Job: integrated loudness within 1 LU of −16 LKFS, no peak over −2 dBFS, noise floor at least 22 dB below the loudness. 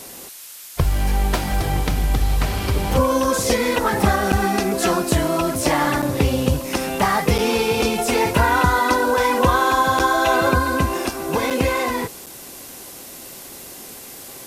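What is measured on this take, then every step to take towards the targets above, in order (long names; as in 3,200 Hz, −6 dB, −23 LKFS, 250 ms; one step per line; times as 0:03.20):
number of dropouts 6; longest dropout 6.8 ms; background noise floor −38 dBFS; target noise floor −42 dBFS; integrated loudness −19.5 LKFS; sample peak −2.0 dBFS; target loudness −16.0 LKFS
→ repair the gap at 0:04.32/0:06.02/0:07.38/0:09.99/0:11.50/0:12.26, 6.8 ms
noise reduction from a noise print 6 dB
level +3.5 dB
brickwall limiter −2 dBFS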